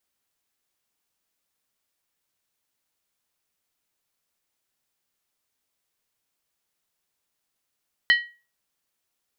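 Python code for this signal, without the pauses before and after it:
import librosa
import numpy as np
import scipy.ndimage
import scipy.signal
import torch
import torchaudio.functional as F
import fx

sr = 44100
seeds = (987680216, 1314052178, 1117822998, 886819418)

y = fx.strike_skin(sr, length_s=0.63, level_db=-11.5, hz=1910.0, decay_s=0.33, tilt_db=7.0, modes=5)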